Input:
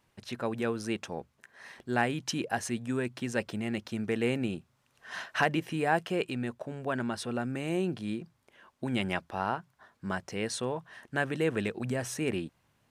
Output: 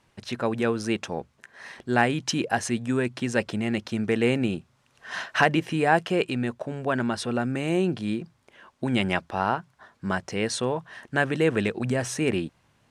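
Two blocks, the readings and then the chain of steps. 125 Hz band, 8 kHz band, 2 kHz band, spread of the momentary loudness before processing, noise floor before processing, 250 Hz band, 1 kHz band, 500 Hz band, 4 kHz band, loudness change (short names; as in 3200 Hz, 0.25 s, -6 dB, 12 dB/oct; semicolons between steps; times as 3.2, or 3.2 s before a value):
+6.5 dB, +5.5 dB, +6.5 dB, 11 LU, -72 dBFS, +6.5 dB, +6.5 dB, +6.5 dB, +6.5 dB, +6.5 dB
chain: LPF 9600 Hz 12 dB/oct; gain +6.5 dB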